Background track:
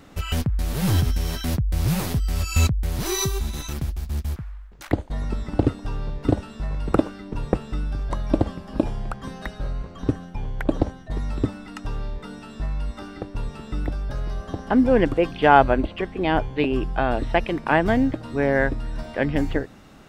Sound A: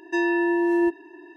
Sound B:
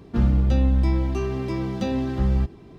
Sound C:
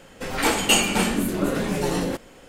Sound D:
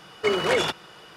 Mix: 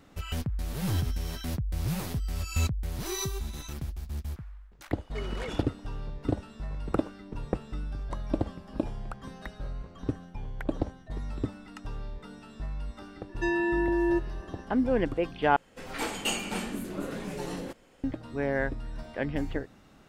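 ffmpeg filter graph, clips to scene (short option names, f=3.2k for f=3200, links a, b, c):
-filter_complex "[0:a]volume=-8.5dB[a];[3:a]highshelf=f=8.5k:g=-4[b];[a]asplit=2[c][d];[c]atrim=end=15.564[e];[b]atrim=end=2.48,asetpts=PTS-STARTPTS,volume=-11.5dB[f];[d]atrim=start=18.036[g];[4:a]atrim=end=1.16,asetpts=PTS-STARTPTS,volume=-16.5dB,afade=t=in:d=0.004:c=hsin,afade=t=out:st=1.156:d=0.004:c=hsin,adelay=4910[h];[1:a]atrim=end=1.36,asetpts=PTS-STARTPTS,volume=-5dB,afade=t=in:d=0.004:c=hsin,afade=t=out:st=1.356:d=0.004:c=hsin,adelay=13290[i];[e][f]acrossfade=d=0.004:c1=hsin:c2=hsin[j];[j][g]acrossfade=d=0.004:c1=hsin:c2=hsin[k];[k][h][i]amix=inputs=3:normalize=0"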